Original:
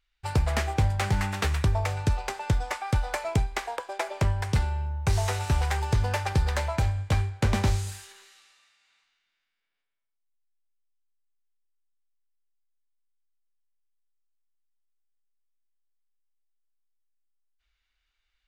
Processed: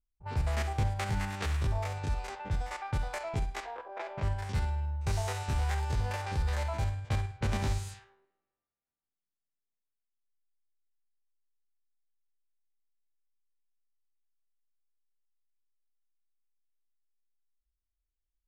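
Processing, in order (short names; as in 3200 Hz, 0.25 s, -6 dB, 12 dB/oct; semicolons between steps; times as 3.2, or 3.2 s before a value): stepped spectrum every 50 ms; flutter echo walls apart 11.6 m, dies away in 0.3 s; low-pass opened by the level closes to 320 Hz, open at -25.5 dBFS; gain -5 dB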